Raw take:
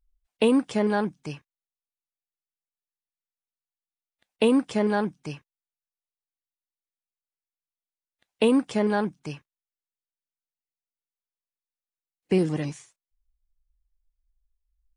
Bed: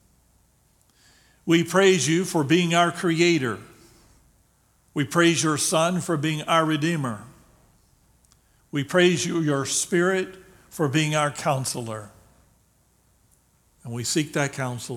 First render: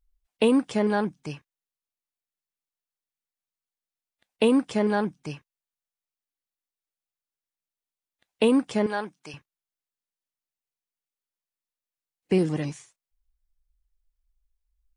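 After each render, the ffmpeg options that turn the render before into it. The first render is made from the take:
ffmpeg -i in.wav -filter_complex "[0:a]asettb=1/sr,asplit=3[link_01][link_02][link_03];[link_01]atrim=end=8.864[link_04];[link_02]atrim=start=8.86:end=9.34,asetpts=PTS-STARTPTS,afade=type=in:duration=0.004:curve=qsin,afade=type=out:start_time=0.476:duration=0.004:curve=qsin,highpass=frequency=760:poles=1[link_05];[link_03]atrim=start=9.336[link_06];[link_04][link_05]acrossfade=duration=0.004:curve1=hsin:curve2=qsin[link_07];[link_07][link_06]acrossfade=duration=0.004:curve1=qsin:curve2=hsin" out.wav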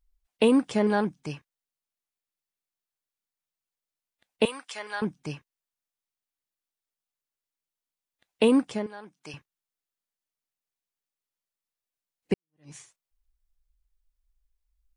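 ffmpeg -i in.wav -filter_complex "[0:a]asettb=1/sr,asplit=3[link_01][link_02][link_03];[link_01]atrim=end=4.454[link_04];[link_02]atrim=start=4.45:end=5.02,asetpts=PTS-STARTPTS,afade=type=in:duration=0.004:curve=qsin,afade=type=out:start_time=0.566:duration=0.004:curve=qsin,highpass=1300[link_05];[link_03]atrim=start=5.016[link_06];[link_04][link_05]acrossfade=duration=0.004:curve1=hsin:curve2=qsin[link_07];[link_07][link_06]acrossfade=duration=0.004:curve1=qsin:curve2=hsin,asplit=4[link_08][link_09][link_10][link_11];[link_08]atrim=end=8.9,asetpts=PTS-STARTPTS,afade=type=out:start_time=8.6:duration=0.3:silence=0.199526[link_12];[link_09]atrim=start=8.9:end=9.01,asetpts=PTS-STARTPTS,volume=-14dB[link_13];[link_10]atrim=start=9.01:end=12.34,asetpts=PTS-STARTPTS,afade=type=in:duration=0.3:silence=0.199526,afade=type=out:start_time=3.326:duration=0.004:curve=hsin[link_14];[link_11]atrim=start=12.34,asetpts=PTS-STARTPTS,afade=type=in:duration=0.41:curve=exp[link_15];[link_12][link_13][link_14][link_15]concat=n=4:v=0:a=1" out.wav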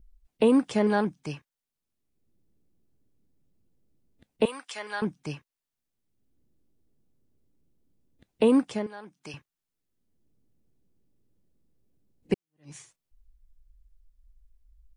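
ffmpeg -i in.wav -filter_complex "[0:a]acrossover=split=350|1600[link_01][link_02][link_03];[link_01]acompressor=mode=upward:threshold=-42dB:ratio=2.5[link_04];[link_03]alimiter=level_in=2dB:limit=-24dB:level=0:latency=1:release=129,volume=-2dB[link_05];[link_04][link_02][link_05]amix=inputs=3:normalize=0" out.wav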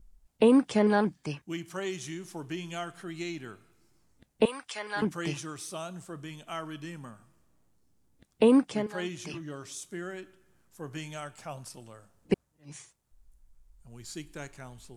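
ffmpeg -i in.wav -i bed.wav -filter_complex "[1:a]volume=-17.5dB[link_01];[0:a][link_01]amix=inputs=2:normalize=0" out.wav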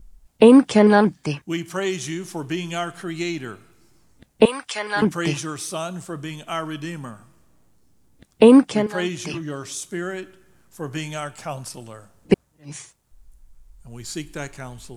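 ffmpeg -i in.wav -af "volume=10dB" out.wav

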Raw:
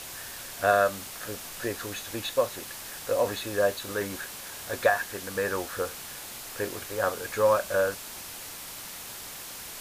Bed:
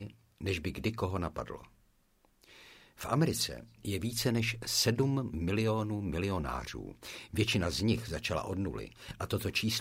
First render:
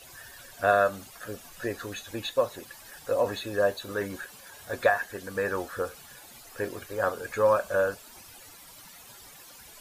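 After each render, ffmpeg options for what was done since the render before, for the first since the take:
ffmpeg -i in.wav -af "afftdn=noise_reduction=13:noise_floor=-41" out.wav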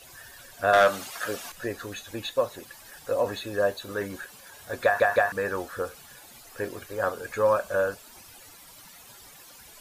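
ffmpeg -i in.wav -filter_complex "[0:a]asettb=1/sr,asplit=3[link_01][link_02][link_03];[link_01]atrim=end=0.734[link_04];[link_02]atrim=start=0.73:end=1.52,asetpts=PTS-STARTPTS,afade=type=in:duration=0.004:curve=qsin,afade=type=out:start_time=0.786:duration=0.004:curve=qsin,asplit=2[link_05][link_06];[link_06]highpass=frequency=720:poles=1,volume=17dB,asoftclip=type=tanh:threshold=-10dB[link_07];[link_05][link_07]amix=inputs=2:normalize=0,lowpass=frequency=6900:poles=1,volume=-6dB[link_08];[link_03]atrim=start=1.516[link_09];[link_04][link_08]acrossfade=duration=0.004:curve1=hsin:curve2=qsin[link_10];[link_10][link_09]acrossfade=duration=0.004:curve1=qsin:curve2=hsin,asplit=4[link_11][link_12][link_13][link_14];[link_11]atrim=end=5.002[link_15];[link_12]atrim=start=4.838:end=5.002[link_16];[link_13]atrim=start=4.838:end=5.002[link_17];[link_14]atrim=start=5.318[link_18];[link_15][link_16]acrossfade=duration=0.004:curve1=hsin:curve2=hsin[link_19];[link_19][link_17]acrossfade=duration=0.004:curve1=hsin:curve2=hsin[link_20];[link_20][link_18]acrossfade=duration=0.004:curve1=hsin:curve2=hsin" out.wav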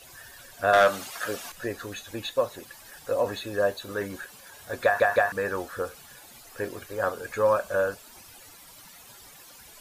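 ffmpeg -i in.wav -af anull out.wav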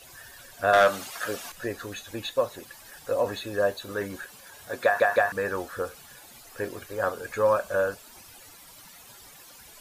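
ffmpeg -i in.wav -filter_complex "[0:a]asettb=1/sr,asplit=3[link_01][link_02][link_03];[link_01]atrim=end=4.694[link_04];[link_02]atrim=start=4.69:end=5.19,asetpts=PTS-STARTPTS,afade=type=in:duration=0.004:curve=qsin,afade=type=out:start_time=0.496:duration=0.004:curve=qsin,highpass=140[link_05];[link_03]atrim=start=5.186[link_06];[link_04][link_05]acrossfade=duration=0.004:curve1=hsin:curve2=qsin[link_07];[link_07][link_06]acrossfade=duration=0.004:curve1=qsin:curve2=hsin" out.wav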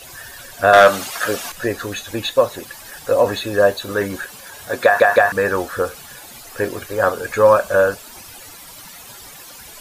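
ffmpeg -i in.wav -af "volume=10.5dB,alimiter=limit=-1dB:level=0:latency=1" out.wav

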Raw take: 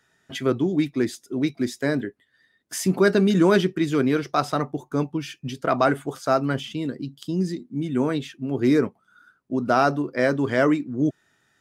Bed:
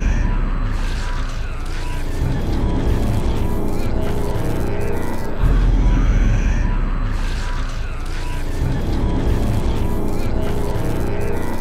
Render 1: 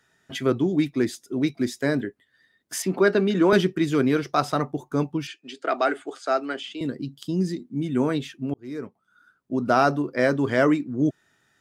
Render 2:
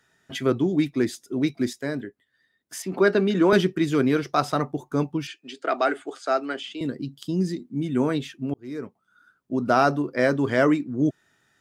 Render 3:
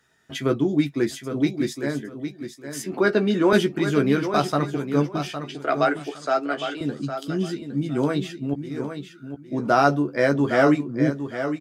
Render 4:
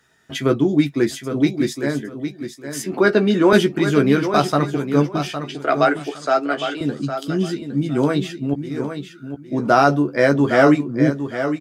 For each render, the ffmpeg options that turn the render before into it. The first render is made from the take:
ffmpeg -i in.wav -filter_complex "[0:a]asettb=1/sr,asplit=3[link_01][link_02][link_03];[link_01]atrim=end=2.824[link_04];[link_02]atrim=start=2.82:end=3.53,asetpts=PTS-STARTPTS,afade=type=in:duration=0.004:curve=qsin,afade=type=out:start_time=0.706:duration=0.004:curve=qsin,acrossover=split=210 4400:gain=0.224 1 0.224[link_05][link_06][link_07];[link_05][link_06][link_07]amix=inputs=3:normalize=0[link_08];[link_03]atrim=start=3.526[link_09];[link_04][link_08]acrossfade=duration=0.004:curve1=hsin:curve2=qsin[link_10];[link_10][link_09]acrossfade=duration=0.004:curve1=qsin:curve2=hsin,asettb=1/sr,asplit=3[link_11][link_12][link_13];[link_11]atrim=end=5.274[link_14];[link_12]atrim=start=5.27:end=6.81,asetpts=PTS-STARTPTS,afade=type=in:duration=0.004:curve=qsin,afade=type=out:start_time=1.536:duration=0.004:curve=qsin,highpass=frequency=330:width=0.5412,highpass=frequency=330:width=1.3066,equalizer=frequency=520:width_type=q:width=4:gain=-6,equalizer=frequency=1000:width_type=q:width=4:gain=-9,equalizer=frequency=5800:width_type=q:width=4:gain=-7,lowpass=frequency=8000:width=0.5412,lowpass=frequency=8000:width=1.3066[link_15];[link_13]atrim=start=6.806[link_16];[link_14][link_15]acrossfade=duration=0.004:curve1=hsin:curve2=qsin[link_17];[link_17][link_16]acrossfade=duration=0.004:curve1=qsin:curve2=hsin,asplit=2[link_18][link_19];[link_18]atrim=end=8.54,asetpts=PTS-STARTPTS,afade=type=out:start_time=8.536:duration=0.004:curve=hsin[link_20];[link_19]atrim=start=8.54,asetpts=PTS-STARTPTS,afade=type=in:duration=1.1[link_21];[link_20][link_21]concat=n=2:v=0:a=1" out.wav
ffmpeg -i in.wav -filter_complex "[0:a]asplit=3[link_01][link_02][link_03];[link_01]atrim=end=1.732[link_04];[link_02]atrim=start=1.728:end=2.922,asetpts=PTS-STARTPTS,volume=-5.5dB[link_05];[link_03]atrim=start=2.918[link_06];[link_04][link_05]acrossfade=duration=0.004:curve1=hsin:curve2=hsin[link_07];[link_07][link_06]acrossfade=duration=0.004:curve1=hsin:curve2=hsin" out.wav
ffmpeg -i in.wav -filter_complex "[0:a]asplit=2[link_01][link_02];[link_02]adelay=14,volume=-6dB[link_03];[link_01][link_03]amix=inputs=2:normalize=0,aecho=1:1:810|1620|2430:0.355|0.0816|0.0188" out.wav
ffmpeg -i in.wav -af "volume=4.5dB,alimiter=limit=-1dB:level=0:latency=1" out.wav

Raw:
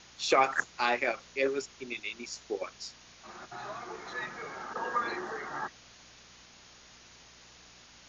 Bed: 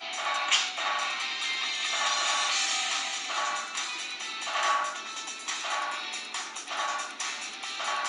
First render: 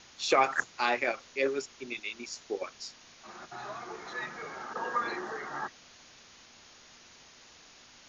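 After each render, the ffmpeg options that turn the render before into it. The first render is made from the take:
ffmpeg -i in.wav -af "bandreject=frequency=60:width_type=h:width=4,bandreject=frequency=120:width_type=h:width=4,bandreject=frequency=180:width_type=h:width=4" out.wav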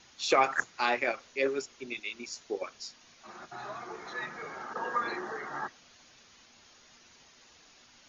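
ffmpeg -i in.wav -af "afftdn=noise_reduction=6:noise_floor=-56" out.wav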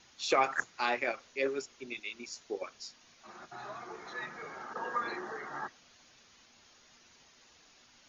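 ffmpeg -i in.wav -af "volume=-3dB" out.wav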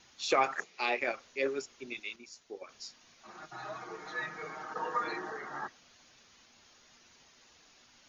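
ffmpeg -i in.wav -filter_complex "[0:a]asettb=1/sr,asplit=3[link_01][link_02][link_03];[link_01]atrim=end=0.554[link_04];[link_02]atrim=start=0.55:end=1.01,asetpts=PTS-STARTPTS,afade=type=in:duration=0.004:curve=qsin,afade=type=out:start_time=0.456:duration=0.004:curve=qsin,highpass=frequency=180:width=0.5412,highpass=frequency=180:width=1.3066,equalizer=frequency=280:width_type=q:width=4:gain=-8,equalizer=frequency=420:width_type=q:width=4:gain=7,equalizer=frequency=1000:width_type=q:width=4:gain=-5,equalizer=frequency=1500:width_type=q:width=4:gain=-9,equalizer=frequency=2400:width_type=q:width=4:gain=6,lowpass=frequency=6300:width=0.5412,lowpass=frequency=6300:width=1.3066[link_05];[link_03]atrim=start=1.006[link_06];[link_04][link_05]acrossfade=duration=0.004:curve1=hsin:curve2=qsin[link_07];[link_07][link_06]acrossfade=duration=0.004:curve1=qsin:curve2=hsin,asettb=1/sr,asplit=3[link_08][link_09][link_10];[link_08]atrim=end=3.374[link_11];[link_09]atrim=start=3.37:end=5.3,asetpts=PTS-STARTPTS,afade=type=in:duration=0.004:curve=qsin,afade=type=out:start_time=1.926:duration=0.004:curve=qsin,aecho=1:1:6.4:0.65,atrim=end_sample=85113[link_12];[link_10]atrim=start=5.296[link_13];[link_11][link_12]acrossfade=duration=0.004:curve1=hsin:curve2=qsin[link_14];[link_14][link_13]acrossfade=duration=0.004:curve1=qsin:curve2=hsin,asplit=3[link_15][link_16][link_17];[link_15]atrim=end=2.162[link_18];[link_16]atrim=start=2.158:end=2.692,asetpts=PTS-STARTPTS,volume=-7dB[link_19];[link_17]atrim=start=2.688[link_20];[link_18][link_19]acrossfade=duration=0.004:curve1=hsin:curve2=hsin[link_21];[link_21][link_20]acrossfade=duration=0.004:curve1=hsin:curve2=hsin" out.wav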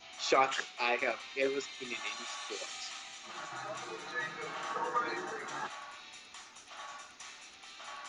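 ffmpeg -i in.wav -i bed.wav -filter_complex "[1:a]volume=-15.5dB[link_01];[0:a][link_01]amix=inputs=2:normalize=0" out.wav

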